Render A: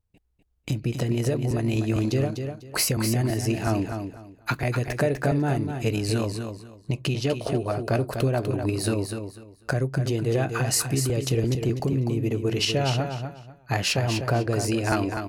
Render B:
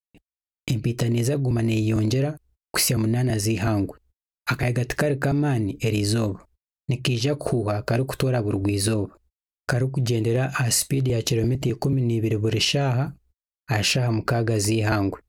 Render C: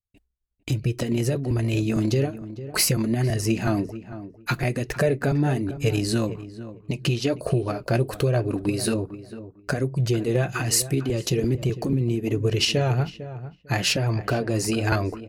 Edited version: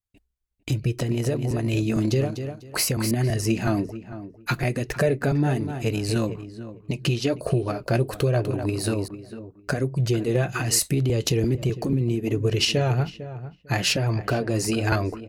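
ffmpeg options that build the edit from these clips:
-filter_complex "[0:a]asplit=4[s0][s1][s2][s3];[2:a]asplit=6[s4][s5][s6][s7][s8][s9];[s4]atrim=end=1.022[s10];[s0]atrim=start=1.018:end=1.672[s11];[s5]atrim=start=1.668:end=2.212[s12];[s1]atrim=start=2.208:end=3.112[s13];[s6]atrim=start=3.108:end=5.602[s14];[s2]atrim=start=5.598:end=6.162[s15];[s7]atrim=start=6.158:end=8.452[s16];[s3]atrim=start=8.448:end=9.082[s17];[s8]atrim=start=9.078:end=10.792[s18];[1:a]atrim=start=10.788:end=11.452[s19];[s9]atrim=start=11.448[s20];[s10][s11]acrossfade=d=0.004:c1=hsin:c2=hsin[s21];[s21][s12]acrossfade=d=0.004:c1=hsin:c2=hsin[s22];[s22][s13]acrossfade=d=0.004:c1=hsin:c2=hsin[s23];[s23][s14]acrossfade=d=0.004:c1=hsin:c2=hsin[s24];[s24][s15]acrossfade=d=0.004:c1=hsin:c2=hsin[s25];[s25][s16]acrossfade=d=0.004:c1=hsin:c2=hsin[s26];[s26][s17]acrossfade=d=0.004:c1=hsin:c2=hsin[s27];[s27][s18]acrossfade=d=0.004:c1=hsin:c2=hsin[s28];[s28][s19]acrossfade=d=0.004:c1=hsin:c2=hsin[s29];[s29][s20]acrossfade=d=0.004:c1=hsin:c2=hsin"

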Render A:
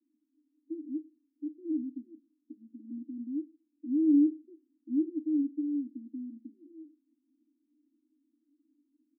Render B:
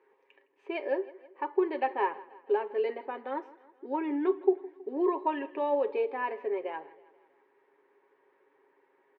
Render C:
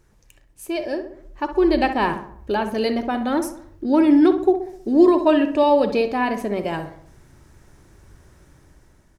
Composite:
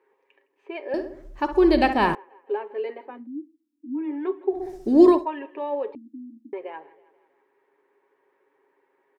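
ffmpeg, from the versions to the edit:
-filter_complex "[2:a]asplit=2[s0][s1];[0:a]asplit=2[s2][s3];[1:a]asplit=5[s4][s5][s6][s7][s8];[s4]atrim=end=0.942[s9];[s0]atrim=start=0.938:end=2.152[s10];[s5]atrim=start=2.148:end=3.27[s11];[s2]atrim=start=3.03:end=4.18[s12];[s6]atrim=start=3.94:end=4.66[s13];[s1]atrim=start=4.5:end=5.27[s14];[s7]atrim=start=5.11:end=5.952[s15];[s3]atrim=start=5.948:end=6.532[s16];[s8]atrim=start=6.528[s17];[s9][s10]acrossfade=d=0.004:c1=hsin:c2=hsin[s18];[s18][s11]acrossfade=d=0.004:c1=hsin:c2=hsin[s19];[s19][s12]acrossfade=d=0.24:c1=tri:c2=tri[s20];[s20][s13]acrossfade=d=0.24:c1=tri:c2=tri[s21];[s21][s14]acrossfade=d=0.16:c1=tri:c2=tri[s22];[s22][s15]acrossfade=d=0.16:c1=tri:c2=tri[s23];[s23][s16]acrossfade=d=0.004:c1=hsin:c2=hsin[s24];[s24][s17]acrossfade=d=0.004:c1=hsin:c2=hsin"

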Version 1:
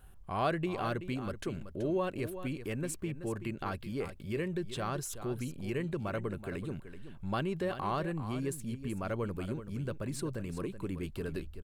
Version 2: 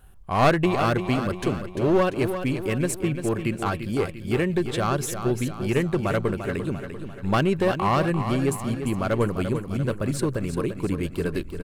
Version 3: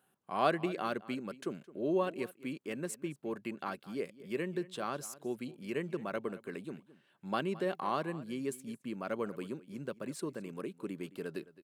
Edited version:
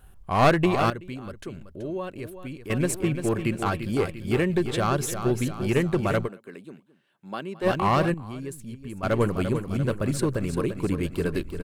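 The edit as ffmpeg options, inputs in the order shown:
-filter_complex "[0:a]asplit=2[s0][s1];[1:a]asplit=4[s2][s3][s4][s5];[s2]atrim=end=0.902[s6];[s0]atrim=start=0.898:end=2.702[s7];[s3]atrim=start=2.698:end=6.29[s8];[2:a]atrim=start=6.23:end=7.67[s9];[s4]atrim=start=7.61:end=8.142[s10];[s1]atrim=start=8.138:end=9.032[s11];[s5]atrim=start=9.028[s12];[s6][s7]acrossfade=d=0.004:c1=hsin:c2=hsin[s13];[s13][s8]acrossfade=d=0.004:c1=hsin:c2=hsin[s14];[s14][s9]acrossfade=d=0.06:c1=tri:c2=tri[s15];[s15][s10]acrossfade=d=0.06:c1=tri:c2=tri[s16];[s16][s11]acrossfade=d=0.004:c1=hsin:c2=hsin[s17];[s17][s12]acrossfade=d=0.004:c1=hsin:c2=hsin"

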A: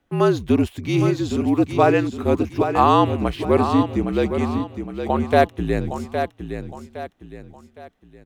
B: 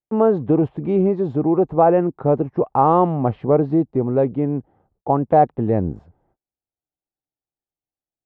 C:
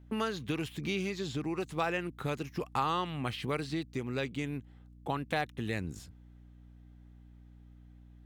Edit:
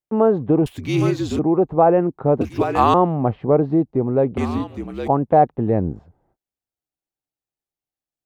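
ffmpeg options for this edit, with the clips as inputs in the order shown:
-filter_complex "[0:a]asplit=3[s0][s1][s2];[1:a]asplit=4[s3][s4][s5][s6];[s3]atrim=end=0.662[s7];[s0]atrim=start=0.658:end=1.392[s8];[s4]atrim=start=1.388:end=2.412[s9];[s1]atrim=start=2.408:end=2.942[s10];[s5]atrim=start=2.938:end=4.372[s11];[s2]atrim=start=4.368:end=5.082[s12];[s6]atrim=start=5.078[s13];[s7][s8]acrossfade=d=0.004:c1=hsin:c2=hsin[s14];[s14][s9]acrossfade=d=0.004:c1=hsin:c2=hsin[s15];[s15][s10]acrossfade=d=0.004:c1=hsin:c2=hsin[s16];[s16][s11]acrossfade=d=0.004:c1=hsin:c2=hsin[s17];[s17][s12]acrossfade=d=0.004:c1=hsin:c2=hsin[s18];[s18][s13]acrossfade=d=0.004:c1=hsin:c2=hsin"

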